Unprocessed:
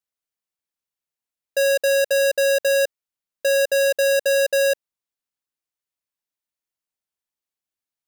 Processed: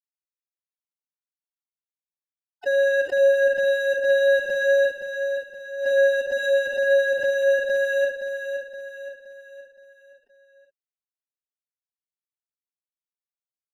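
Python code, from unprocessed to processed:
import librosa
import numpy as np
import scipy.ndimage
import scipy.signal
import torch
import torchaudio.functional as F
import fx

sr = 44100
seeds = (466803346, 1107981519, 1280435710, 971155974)

p1 = scipy.signal.sosfilt(scipy.signal.butter(6, 3300.0, 'lowpass', fs=sr, output='sos'), x)
p2 = fx.tilt_eq(p1, sr, slope=2.0)
p3 = fx.level_steps(p2, sr, step_db=17)
p4 = p2 + (p3 * 10.0 ** (2.5 / 20.0))
p5 = fx.backlash(p4, sr, play_db=-26.0)
p6 = fx.chorus_voices(p5, sr, voices=4, hz=0.63, base_ms=29, depth_ms=3.9, mix_pct=35)
p7 = fx.notch_comb(p6, sr, f0_hz=1400.0)
p8 = fx.stretch_vocoder(p7, sr, factor=1.7)
p9 = p8 + fx.echo_feedback(p8, sr, ms=520, feedback_pct=45, wet_db=-7.5, dry=0)
y = fx.pre_swell(p9, sr, db_per_s=100.0)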